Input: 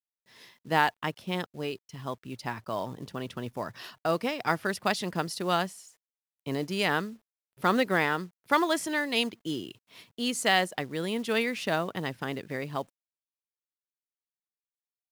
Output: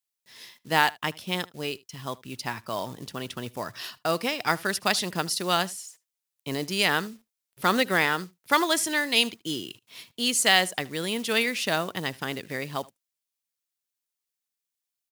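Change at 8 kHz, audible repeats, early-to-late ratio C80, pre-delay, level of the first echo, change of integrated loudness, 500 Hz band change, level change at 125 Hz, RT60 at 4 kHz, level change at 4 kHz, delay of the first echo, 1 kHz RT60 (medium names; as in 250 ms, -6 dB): +10.0 dB, 1, no reverb, no reverb, -23.0 dB, +3.5 dB, +0.5 dB, 0.0 dB, no reverb, +7.0 dB, 76 ms, no reverb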